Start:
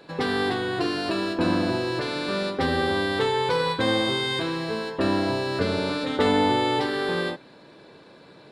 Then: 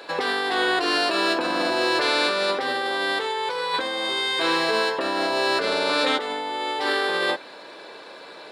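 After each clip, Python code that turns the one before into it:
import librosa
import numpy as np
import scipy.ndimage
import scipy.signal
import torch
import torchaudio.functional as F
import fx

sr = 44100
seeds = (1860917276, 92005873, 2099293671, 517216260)

y = scipy.signal.sosfilt(scipy.signal.butter(2, 540.0, 'highpass', fs=sr, output='sos'), x)
y = fx.over_compress(y, sr, threshold_db=-32.0, ratio=-1.0)
y = y * 10.0 ** (8.0 / 20.0)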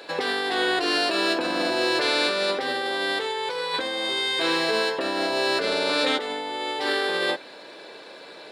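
y = fx.peak_eq(x, sr, hz=1100.0, db=-5.0, octaves=0.93)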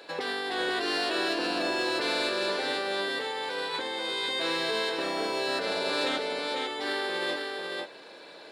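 y = x + 10.0 ** (-4.5 / 20.0) * np.pad(x, (int(496 * sr / 1000.0), 0))[:len(x)]
y = 10.0 ** (-10.5 / 20.0) * np.tanh(y / 10.0 ** (-10.5 / 20.0))
y = y * 10.0 ** (-6.0 / 20.0)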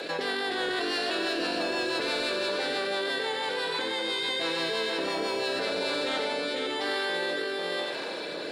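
y = fx.rotary_switch(x, sr, hz=6.0, then_hz=1.1, switch_at_s=5.43)
y = y + 10.0 ** (-8.5 / 20.0) * np.pad(y, (int(90 * sr / 1000.0), 0))[:len(y)]
y = fx.env_flatten(y, sr, amount_pct=70)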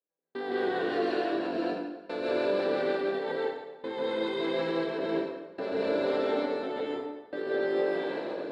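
y = fx.bandpass_q(x, sr, hz=290.0, q=0.55)
y = fx.step_gate(y, sr, bpm=86, pattern='..xxxxx.x.', floor_db=-60.0, edge_ms=4.5)
y = fx.rev_plate(y, sr, seeds[0], rt60_s=1.1, hf_ratio=0.85, predelay_ms=120, drr_db=-3.5)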